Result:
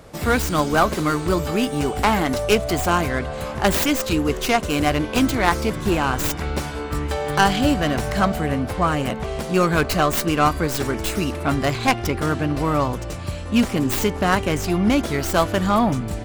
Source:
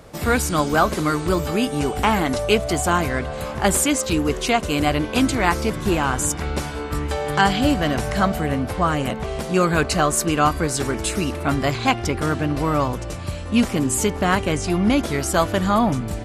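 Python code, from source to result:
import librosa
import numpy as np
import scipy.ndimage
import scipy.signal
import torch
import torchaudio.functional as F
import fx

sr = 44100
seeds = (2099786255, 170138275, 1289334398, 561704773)

y = fx.tracing_dist(x, sr, depth_ms=0.25)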